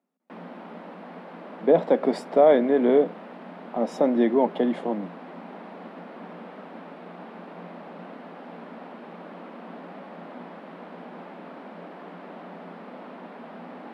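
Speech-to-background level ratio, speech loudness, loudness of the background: 20.0 dB, -22.0 LUFS, -42.0 LUFS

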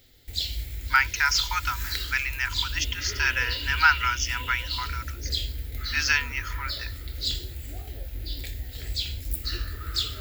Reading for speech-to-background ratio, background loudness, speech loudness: 6.5 dB, -32.0 LUFS, -25.5 LUFS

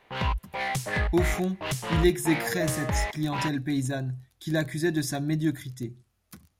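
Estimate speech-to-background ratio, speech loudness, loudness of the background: 1.5 dB, -29.0 LUFS, -30.5 LUFS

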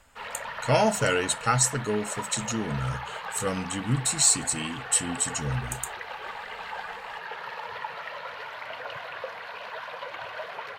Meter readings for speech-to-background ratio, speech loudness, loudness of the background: 11.0 dB, -26.0 LUFS, -37.0 LUFS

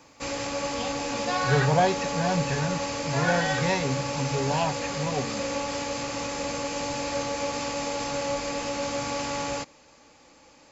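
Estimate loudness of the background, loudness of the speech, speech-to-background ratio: -30.0 LUFS, -28.0 LUFS, 2.0 dB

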